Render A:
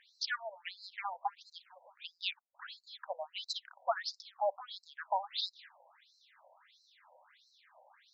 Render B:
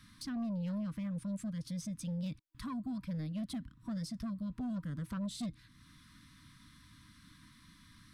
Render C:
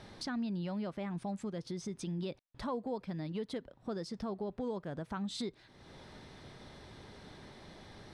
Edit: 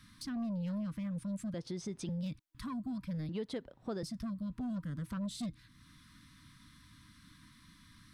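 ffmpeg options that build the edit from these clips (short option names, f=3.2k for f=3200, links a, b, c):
-filter_complex "[2:a]asplit=2[a][b];[1:a]asplit=3[c][d][e];[c]atrim=end=1.542[f];[a]atrim=start=1.538:end=2.092[g];[d]atrim=start=2.088:end=3.292[h];[b]atrim=start=3.288:end=4.032[i];[e]atrim=start=4.028[j];[f][g]acrossfade=d=0.004:c1=hsin:c2=hsin[k];[k][h]acrossfade=d=0.004:c1=hsin:c2=hsin[l];[l][i]acrossfade=d=0.004:c1=hsin:c2=hsin[m];[m][j]acrossfade=d=0.004:c1=hsin:c2=hsin"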